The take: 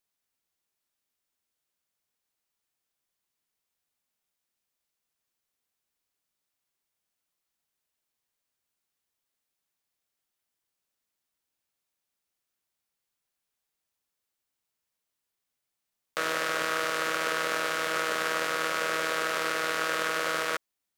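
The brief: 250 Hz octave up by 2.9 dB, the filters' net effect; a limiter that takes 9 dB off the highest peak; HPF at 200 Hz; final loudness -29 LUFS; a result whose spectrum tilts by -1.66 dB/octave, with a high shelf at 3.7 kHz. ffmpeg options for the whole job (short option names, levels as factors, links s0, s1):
-af "highpass=200,equalizer=f=250:t=o:g=5.5,highshelf=f=3700:g=6,volume=1.58,alimiter=limit=0.237:level=0:latency=1"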